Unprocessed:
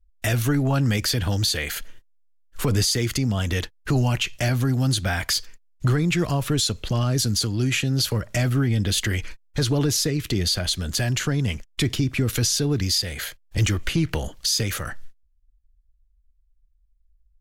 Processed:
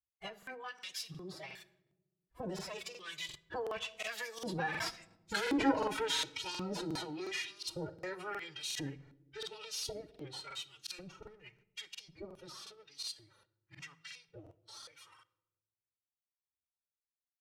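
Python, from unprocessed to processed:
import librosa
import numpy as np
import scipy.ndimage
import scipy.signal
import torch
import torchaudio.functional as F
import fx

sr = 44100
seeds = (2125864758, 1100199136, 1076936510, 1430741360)

p1 = fx.lower_of_two(x, sr, delay_ms=3.2)
p2 = fx.doppler_pass(p1, sr, speed_mps=32, closest_m=11.0, pass_at_s=5.45)
p3 = fx.filter_lfo_bandpass(p2, sr, shape='saw_up', hz=0.91, low_hz=360.0, high_hz=4700.0, q=0.73)
p4 = fx.over_compress(p3, sr, threshold_db=-50.0, ratio=-1.0)
p5 = p3 + (p4 * librosa.db_to_amplitude(-1.0))
p6 = fx.noise_reduce_blind(p5, sr, reduce_db=12)
p7 = fx.pitch_keep_formants(p6, sr, semitones=8.5)
p8 = fx.echo_filtered(p7, sr, ms=67, feedback_pct=81, hz=910.0, wet_db=-22)
p9 = fx.room_shoebox(p8, sr, seeds[0], volume_m3=3300.0, walls='furnished', distance_m=0.6)
p10 = fx.buffer_crackle(p9, sr, first_s=0.38, period_s=0.36, block=2048, kind='repeat')
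y = p10 * librosa.db_to_amplitude(3.0)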